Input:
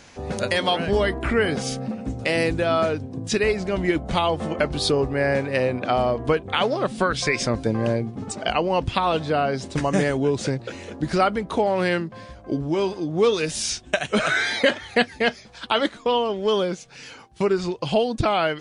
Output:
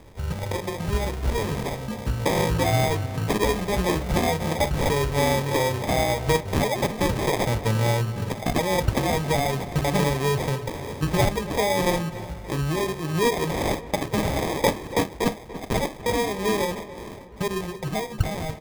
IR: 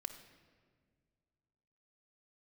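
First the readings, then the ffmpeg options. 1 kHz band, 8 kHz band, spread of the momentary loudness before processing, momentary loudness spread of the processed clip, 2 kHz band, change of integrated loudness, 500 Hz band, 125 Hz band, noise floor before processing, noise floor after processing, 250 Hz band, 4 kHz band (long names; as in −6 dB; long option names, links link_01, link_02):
−1.5 dB, +1.0 dB, 7 LU, 7 LU, −4.5 dB, −1.5 dB, −3.0 dB, +4.0 dB, −45 dBFS, −39 dBFS, −1.5 dB, −3.5 dB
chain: -filter_complex "[0:a]equalizer=frequency=250:width_type=o:width=0.33:gain=-11,equalizer=frequency=800:width_type=o:width=0.33:gain=-11,equalizer=frequency=6300:width_type=o:width=0.33:gain=11[link_01];[1:a]atrim=start_sample=2205,afade=type=out:start_time=0.14:duration=0.01,atrim=end_sample=6615,asetrate=66150,aresample=44100[link_02];[link_01][link_02]afir=irnorm=-1:irlink=0,crystalizer=i=5:c=0,asplit=2[link_03][link_04];[link_04]acompressor=threshold=-34dB:ratio=6,volume=0dB[link_05];[link_03][link_05]amix=inputs=2:normalize=0,bass=frequency=250:gain=13,treble=frequency=4000:gain=-14,acrossover=split=240[link_06][link_07];[link_07]dynaudnorm=framelen=250:gausssize=13:maxgain=11.5dB[link_08];[link_06][link_08]amix=inputs=2:normalize=0,acrusher=samples=31:mix=1:aa=0.000001,asplit=2[link_09][link_10];[link_10]adelay=287,lowpass=frequency=2600:poles=1,volume=-15dB,asplit=2[link_11][link_12];[link_12]adelay=287,lowpass=frequency=2600:poles=1,volume=0.53,asplit=2[link_13][link_14];[link_14]adelay=287,lowpass=frequency=2600:poles=1,volume=0.53,asplit=2[link_15][link_16];[link_16]adelay=287,lowpass=frequency=2600:poles=1,volume=0.53,asplit=2[link_17][link_18];[link_18]adelay=287,lowpass=frequency=2600:poles=1,volume=0.53[link_19];[link_09][link_11][link_13][link_15][link_17][link_19]amix=inputs=6:normalize=0,volume=-6dB"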